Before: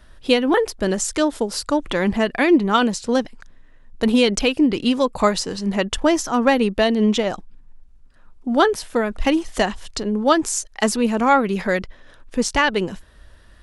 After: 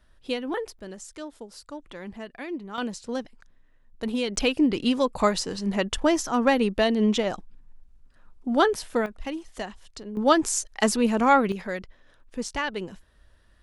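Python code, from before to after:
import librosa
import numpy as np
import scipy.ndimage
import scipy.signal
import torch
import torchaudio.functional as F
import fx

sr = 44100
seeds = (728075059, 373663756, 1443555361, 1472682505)

y = fx.gain(x, sr, db=fx.steps((0.0, -12.5), (0.79, -19.0), (2.78, -11.5), (4.36, -4.5), (9.06, -14.5), (10.17, -3.0), (11.52, -11.0)))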